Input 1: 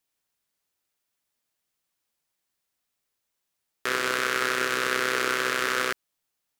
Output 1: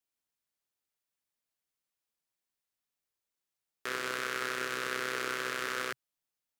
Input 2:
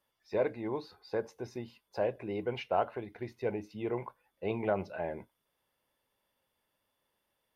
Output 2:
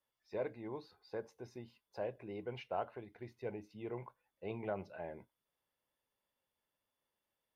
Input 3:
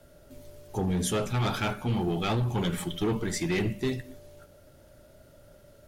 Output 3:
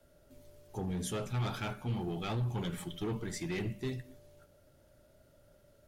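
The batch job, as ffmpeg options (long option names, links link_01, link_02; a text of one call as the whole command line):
ffmpeg -i in.wav -af "adynamicequalizer=threshold=0.00398:dfrequency=130:dqfactor=3.9:tfrequency=130:tqfactor=3.9:attack=5:release=100:ratio=0.375:range=2.5:mode=boostabove:tftype=bell,volume=-9dB" out.wav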